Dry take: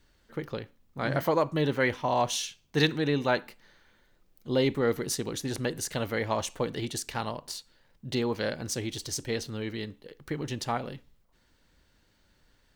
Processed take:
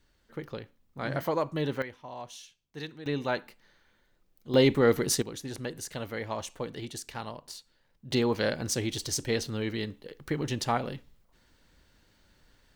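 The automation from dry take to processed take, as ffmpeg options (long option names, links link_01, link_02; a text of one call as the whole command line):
ffmpeg -i in.wav -af "asetnsamples=nb_out_samples=441:pad=0,asendcmd='1.82 volume volume -15.5dB;3.06 volume volume -4dB;4.54 volume volume 4dB;5.22 volume volume -5.5dB;8.11 volume volume 2.5dB',volume=-3.5dB" out.wav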